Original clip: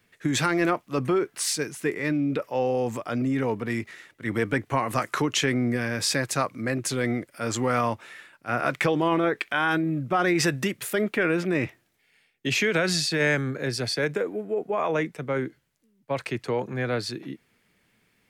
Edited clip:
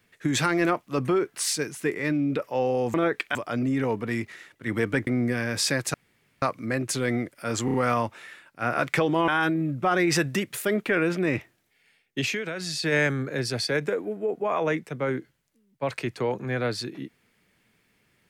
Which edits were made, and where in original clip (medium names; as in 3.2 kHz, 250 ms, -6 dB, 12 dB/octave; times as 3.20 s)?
4.66–5.51 s: delete
6.38 s: insert room tone 0.48 s
7.61 s: stutter 0.03 s, 4 plays
9.15–9.56 s: move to 2.94 s
12.47–13.16 s: dip -9.5 dB, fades 0.33 s quadratic